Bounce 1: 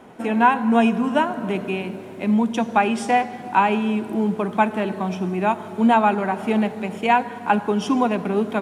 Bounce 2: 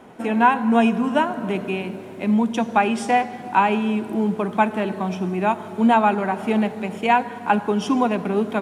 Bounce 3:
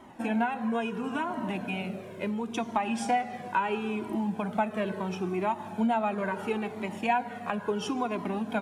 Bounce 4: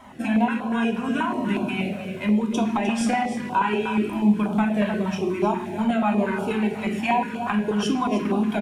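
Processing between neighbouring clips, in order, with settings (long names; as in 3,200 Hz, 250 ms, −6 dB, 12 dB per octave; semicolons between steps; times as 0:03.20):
no processing that can be heard
downward compressor 5 to 1, threshold −20 dBFS, peak gain reduction 9.5 dB; flanger whose copies keep moving one way falling 0.73 Hz
single-tap delay 305 ms −11.5 dB; convolution reverb RT60 0.65 s, pre-delay 3 ms, DRR 2 dB; notch on a step sequencer 8.3 Hz 350–1,900 Hz; level +5.5 dB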